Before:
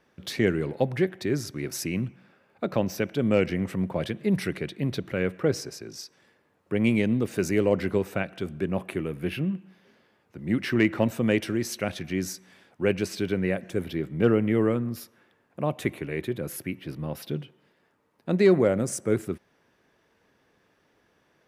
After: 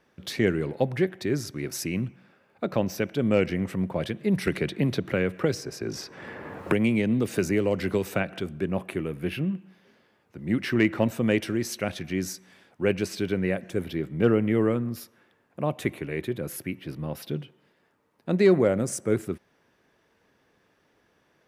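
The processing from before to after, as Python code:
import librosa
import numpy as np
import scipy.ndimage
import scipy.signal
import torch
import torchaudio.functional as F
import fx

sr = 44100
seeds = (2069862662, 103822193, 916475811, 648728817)

y = fx.band_squash(x, sr, depth_pct=100, at=(4.47, 8.4))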